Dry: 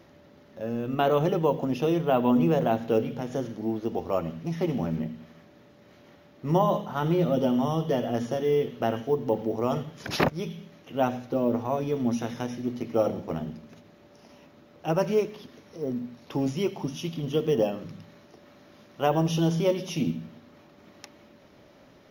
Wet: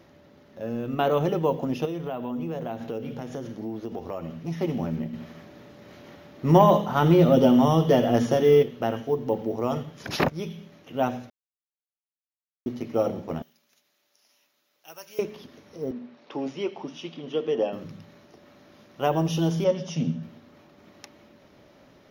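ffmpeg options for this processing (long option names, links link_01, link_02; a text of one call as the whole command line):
ffmpeg -i in.wav -filter_complex "[0:a]asettb=1/sr,asplit=3[link_01][link_02][link_03];[link_01]atrim=end=1.854[link_04];[link_02]atrim=start=1.85:end=4.48,asetpts=PTS-STARTPTS,afade=type=in:duration=0.004:curve=qsin,afade=type=out:start_time=2.626:duration=0.004:curve=qsin,acompressor=threshold=-29dB:ratio=4:attack=3.2:release=140:knee=1:detection=peak[link_05];[link_03]atrim=start=4.476[link_06];[link_04][link_05]acrossfade=duration=0.004:curve1=hsin:curve2=qsin[link_07];[link_07][link_06]acrossfade=duration=0.004:curve1=qsin:curve2=hsin,asettb=1/sr,asplit=3[link_08][link_09][link_10];[link_08]atrim=end=5.134[link_11];[link_09]atrim=start=5.13:end=8.63,asetpts=PTS-STARTPTS,afade=type=in:duration=0.004:curve=qsin,afade=type=out:start_time=3.496:duration=0.004:curve=qsin,acontrast=79[link_12];[link_10]atrim=start=8.626[link_13];[link_11][link_12]acrossfade=duration=0.004:curve1=hsin:curve2=qsin[link_14];[link_14][link_13]acrossfade=duration=0.004:curve1=qsin:curve2=hsin,asettb=1/sr,asplit=3[link_15][link_16][link_17];[link_15]atrim=end=13.424[link_18];[link_16]atrim=start=13.42:end=15.19,asetpts=PTS-STARTPTS,afade=type=in:duration=0.004:curve=qsin,afade=type=out:start_time=1.766:duration=0.004:curve=qsin,aderivative[link_19];[link_17]atrim=start=15.186[link_20];[link_18][link_19]acrossfade=duration=0.004:curve1=hsin:curve2=qsin[link_21];[link_21][link_20]acrossfade=duration=0.004:curve1=qsin:curve2=hsin,asettb=1/sr,asplit=3[link_22][link_23][link_24];[link_22]atrim=end=15.914[link_25];[link_23]atrim=start=15.91:end=17.73,asetpts=PTS-STARTPTS,afade=type=in:duration=0.004:curve=qsin,afade=type=out:start_time=1.816:duration=0.004:curve=qsin,highpass=310,lowpass=3900[link_26];[link_24]atrim=start=17.726[link_27];[link_25][link_26]acrossfade=duration=0.004:curve1=hsin:curve2=qsin[link_28];[link_28][link_27]acrossfade=duration=0.004:curve1=qsin:curve2=hsin,asettb=1/sr,asplit=3[link_29][link_30][link_31];[link_29]atrim=end=19.644[link_32];[link_30]atrim=start=19.64:end=20.23,asetpts=PTS-STARTPTS,afade=type=in:duration=0.004:curve=qsin,afade=type=out:start_time=0.586:duration=0.004:curve=qsin,highpass=100,equalizer=frequency=150:width_type=q:width=4:gain=7,equalizer=frequency=340:width_type=q:width=4:gain=-10,equalizer=frequency=580:width_type=q:width=4:gain=4,equalizer=frequency=1600:width_type=q:width=4:gain=3,equalizer=frequency=2400:width_type=q:width=4:gain=-8,equalizer=frequency=4000:width_type=q:width=4:gain=-6,lowpass=frequency=7200:width=0.5412,lowpass=frequency=7200:width=1.3066[link_33];[link_31]atrim=start=20.226[link_34];[link_32][link_33]acrossfade=duration=0.004:curve1=hsin:curve2=qsin[link_35];[link_35][link_34]acrossfade=duration=0.004:curve1=qsin:curve2=hsin,asplit=3[link_36][link_37][link_38];[link_36]atrim=end=11.3,asetpts=PTS-STARTPTS,afade=type=out:start_time=11.296:duration=0.004:curve=hsin[link_39];[link_37]atrim=start=11.3:end=12.66,asetpts=PTS-STARTPTS,volume=0[link_40];[link_38]atrim=start=12.66,asetpts=PTS-STARTPTS,afade=type=in:duration=0.004:curve=hsin[link_41];[link_39][link_40][link_41]concat=n=3:v=0:a=1" out.wav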